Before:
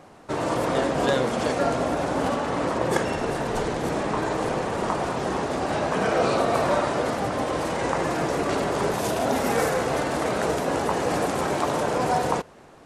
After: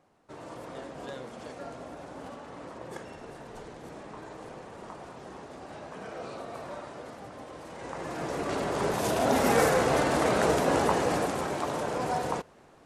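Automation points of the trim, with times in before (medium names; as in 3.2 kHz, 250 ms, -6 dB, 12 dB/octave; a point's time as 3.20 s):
7.63 s -18 dB
8.30 s -8 dB
9.46 s 0 dB
10.84 s 0 dB
11.50 s -7 dB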